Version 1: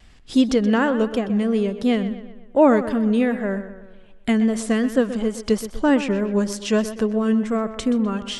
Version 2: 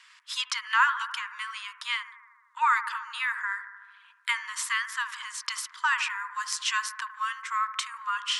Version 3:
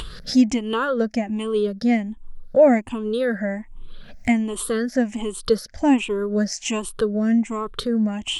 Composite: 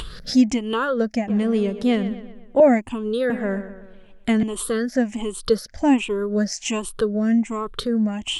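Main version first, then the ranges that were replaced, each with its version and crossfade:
3
1.28–2.60 s: from 1
3.30–4.43 s: from 1
not used: 2

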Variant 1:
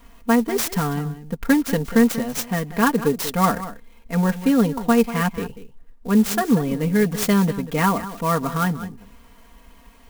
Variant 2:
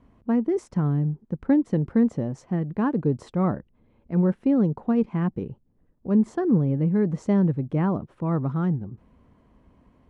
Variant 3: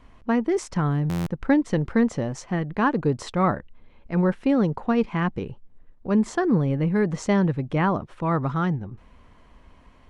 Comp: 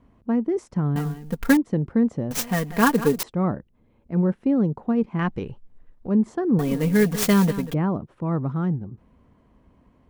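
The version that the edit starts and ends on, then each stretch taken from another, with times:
2
0.96–1.57 s: from 1
2.31–3.23 s: from 1
5.19–6.09 s: from 3
6.59–7.74 s: from 1

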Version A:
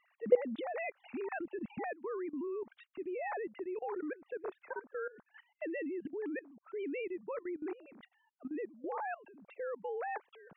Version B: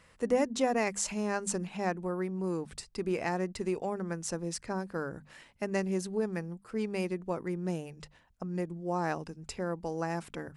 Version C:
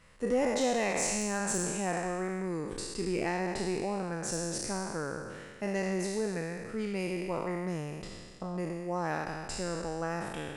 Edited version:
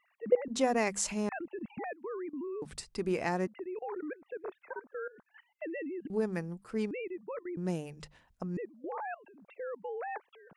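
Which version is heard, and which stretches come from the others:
A
0.48–1.29 s: from B
2.62–3.47 s: from B
6.10–6.91 s: from B
7.57–8.57 s: from B
not used: C

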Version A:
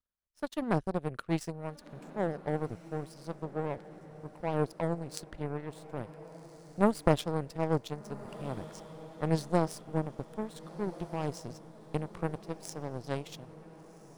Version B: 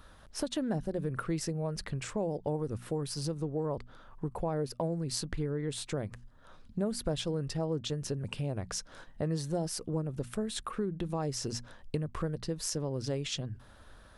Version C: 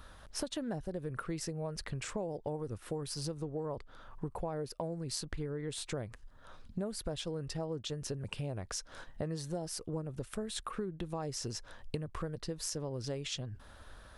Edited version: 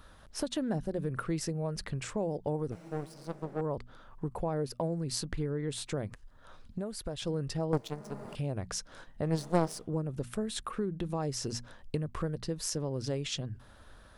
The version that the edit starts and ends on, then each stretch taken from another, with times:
B
2.72–3.61 s: from A
6.14–7.22 s: from C
7.73–8.35 s: from A
9.33–9.80 s: from A, crossfade 0.24 s

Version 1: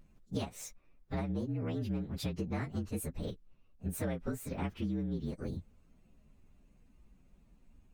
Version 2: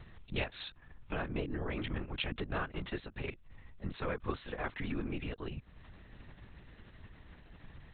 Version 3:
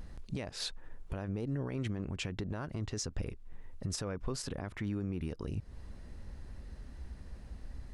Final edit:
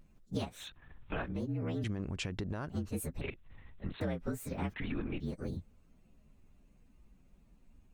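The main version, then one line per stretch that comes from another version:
1
0.59–1.31 s: from 2, crossfade 0.24 s
1.84–2.70 s: from 3
3.21–4.01 s: from 2
4.74–5.20 s: from 2

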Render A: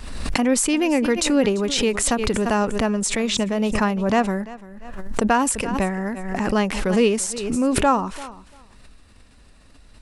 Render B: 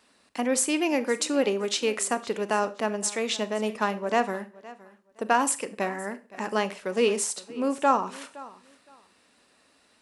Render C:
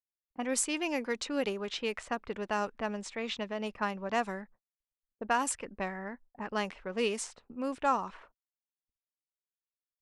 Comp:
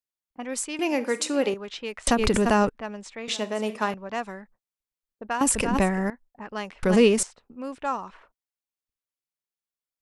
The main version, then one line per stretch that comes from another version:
C
0.79–1.54 s: from B
2.07–2.69 s: from A
3.28–3.94 s: from B
5.41–6.10 s: from A
6.83–7.23 s: from A

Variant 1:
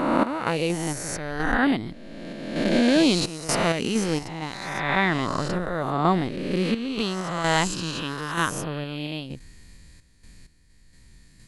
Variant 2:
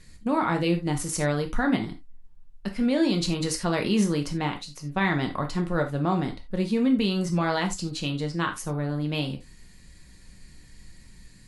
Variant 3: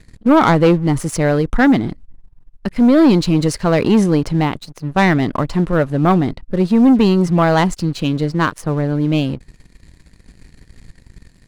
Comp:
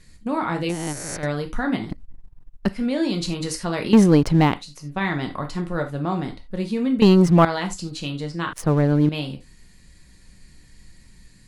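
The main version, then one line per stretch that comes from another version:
2
0.69–1.23 s: from 1
1.90–2.69 s: from 3
3.93–4.54 s: from 3
7.02–7.45 s: from 3
8.53–9.09 s: from 3

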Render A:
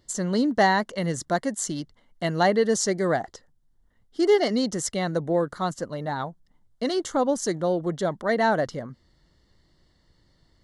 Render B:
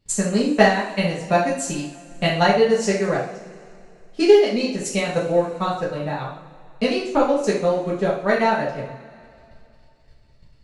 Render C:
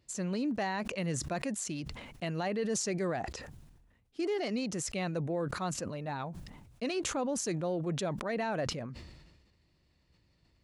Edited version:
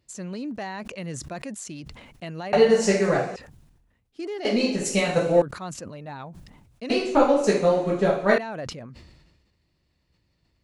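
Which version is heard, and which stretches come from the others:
C
2.53–3.36 s: from B
4.45–5.42 s: from B
6.90–8.38 s: from B
not used: A

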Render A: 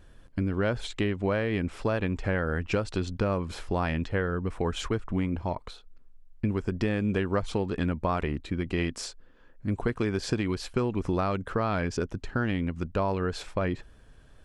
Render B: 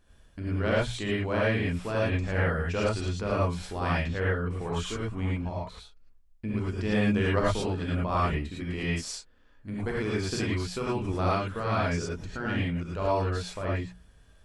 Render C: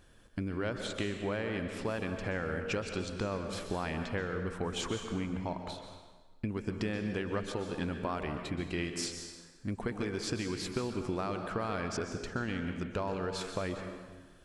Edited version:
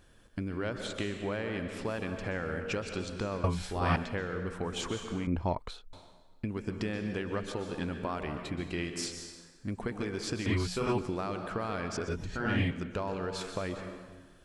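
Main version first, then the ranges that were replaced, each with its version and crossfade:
C
3.44–3.96 s: from B
5.27–5.93 s: from A
10.46–10.98 s: from B
12.08–12.71 s: from B

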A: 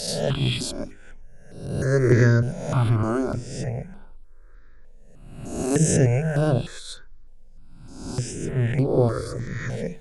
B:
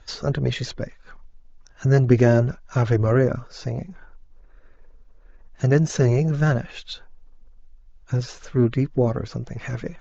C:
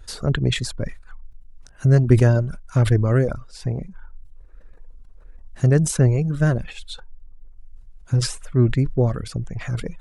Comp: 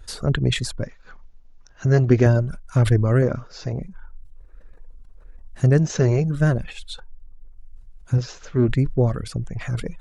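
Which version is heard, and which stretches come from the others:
C
0.83–2.26 s: from B
3.22–3.73 s: from B
5.79–6.24 s: from B
8.18–8.68 s: from B
not used: A

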